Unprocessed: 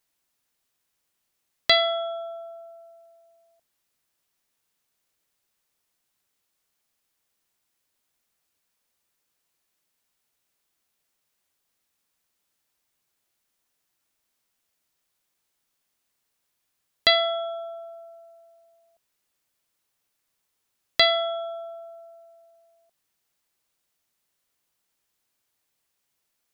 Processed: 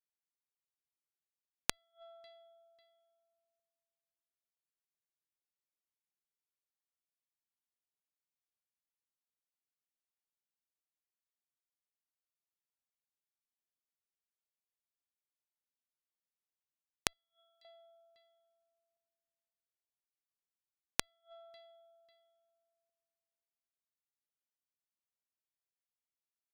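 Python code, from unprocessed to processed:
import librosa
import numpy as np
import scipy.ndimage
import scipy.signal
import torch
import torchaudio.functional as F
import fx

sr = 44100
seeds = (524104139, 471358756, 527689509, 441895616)

p1 = x + fx.echo_feedback(x, sr, ms=546, feedback_pct=30, wet_db=-21.0, dry=0)
p2 = fx.gate_flip(p1, sr, shuts_db=-20.0, range_db=-30)
p3 = fx.differentiator(p2, sr, at=(17.13, 17.65))
y = fx.cheby_harmonics(p3, sr, harmonics=(2, 3, 5), levels_db=(-29, -7, -25), full_scale_db=-3.5)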